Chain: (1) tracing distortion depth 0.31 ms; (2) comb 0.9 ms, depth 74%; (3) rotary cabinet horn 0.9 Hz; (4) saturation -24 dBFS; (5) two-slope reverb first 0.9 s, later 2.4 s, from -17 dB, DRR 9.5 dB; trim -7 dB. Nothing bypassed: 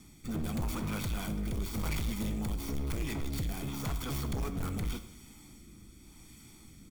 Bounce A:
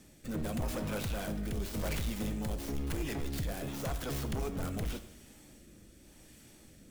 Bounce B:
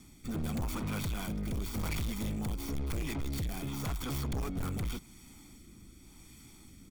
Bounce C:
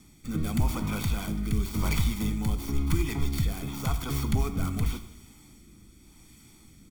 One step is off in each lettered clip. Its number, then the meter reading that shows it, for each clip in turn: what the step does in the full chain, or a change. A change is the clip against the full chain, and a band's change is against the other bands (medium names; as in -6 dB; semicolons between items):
2, 500 Hz band +5.0 dB; 5, crest factor change -5.5 dB; 4, distortion -7 dB